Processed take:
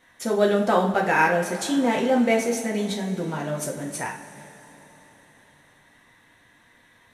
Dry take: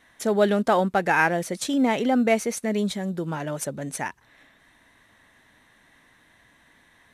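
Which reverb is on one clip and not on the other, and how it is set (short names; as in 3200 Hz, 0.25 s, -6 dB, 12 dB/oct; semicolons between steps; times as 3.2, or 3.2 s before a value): two-slope reverb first 0.39 s, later 4.2 s, from -18 dB, DRR -1 dB; gain -2.5 dB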